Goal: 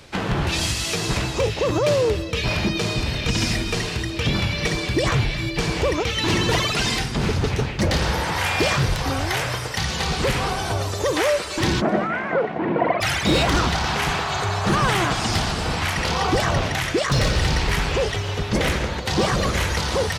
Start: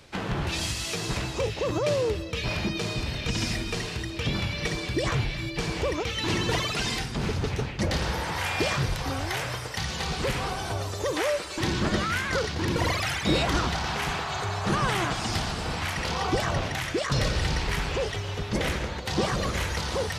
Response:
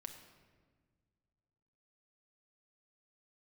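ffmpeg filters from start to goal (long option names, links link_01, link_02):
-filter_complex "[0:a]volume=19.5dB,asoftclip=hard,volume=-19.5dB,asplit=3[link_01][link_02][link_03];[link_01]afade=type=out:start_time=11.8:duration=0.02[link_04];[link_02]highpass=frequency=170:width=0.5412,highpass=frequency=170:width=1.3066,equalizer=frequency=690:width_type=q:width=4:gain=10,equalizer=frequency=1200:width_type=q:width=4:gain=-4,equalizer=frequency=1700:width_type=q:width=4:gain=-5,lowpass=frequency=2000:width=0.5412,lowpass=frequency=2000:width=1.3066,afade=type=in:start_time=11.8:duration=0.02,afade=type=out:start_time=13:duration=0.02[link_05];[link_03]afade=type=in:start_time=13:duration=0.02[link_06];[link_04][link_05][link_06]amix=inputs=3:normalize=0,aecho=1:1:260|520|780:0.0708|0.0361|0.0184,volume=6.5dB"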